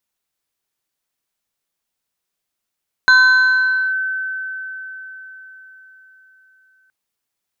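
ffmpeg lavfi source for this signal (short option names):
-f lavfi -i "aevalsrc='0.501*pow(10,-3*t/4.65)*sin(2*PI*1530*t+0.5*clip(1-t/0.86,0,1)*sin(2*PI*1.67*1530*t))':d=3.82:s=44100"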